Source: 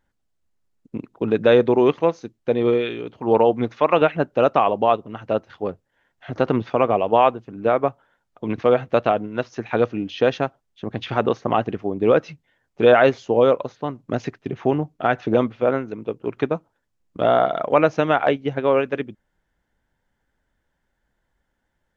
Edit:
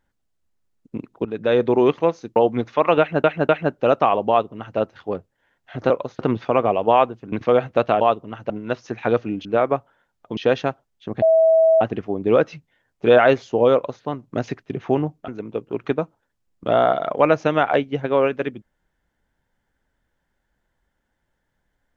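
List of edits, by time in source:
0:01.25–0:01.76: fade in, from −13 dB
0:02.36–0:03.40: remove
0:04.03–0:04.28: repeat, 3 plays
0:04.83–0:05.32: duplicate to 0:09.18
0:07.57–0:08.49: move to 0:10.13
0:10.98–0:11.57: beep over 648 Hz −11 dBFS
0:13.50–0:13.79: duplicate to 0:06.44
0:15.04–0:15.81: remove

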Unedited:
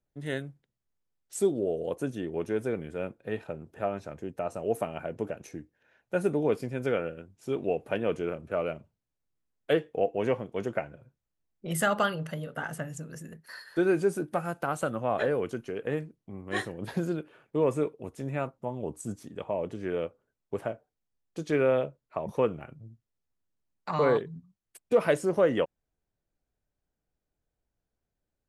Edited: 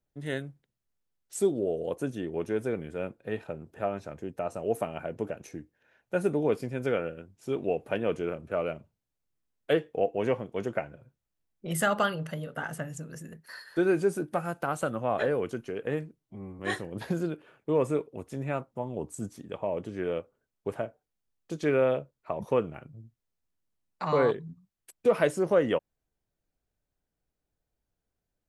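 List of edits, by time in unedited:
0:16.19–0:16.46: time-stretch 1.5×

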